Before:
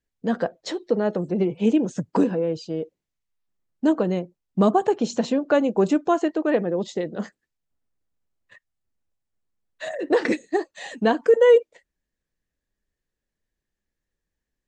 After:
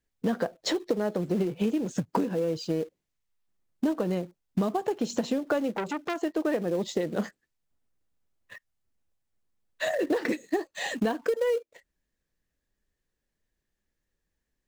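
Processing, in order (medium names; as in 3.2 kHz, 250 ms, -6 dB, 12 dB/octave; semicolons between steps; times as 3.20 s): in parallel at -8.5 dB: companded quantiser 4-bit; on the sum: compression 12:1, threshold -25 dBFS, peak gain reduction 18 dB; 5.75–6.16 s: transformer saturation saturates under 1.7 kHz; trim +1.5 dB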